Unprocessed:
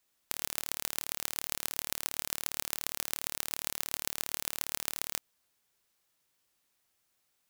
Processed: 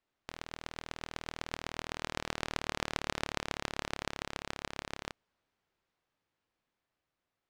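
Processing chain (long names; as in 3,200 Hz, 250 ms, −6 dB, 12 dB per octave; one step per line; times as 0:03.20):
source passing by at 0:02.89, 27 m/s, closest 28 metres
head-to-tape spacing loss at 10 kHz 28 dB
level +11.5 dB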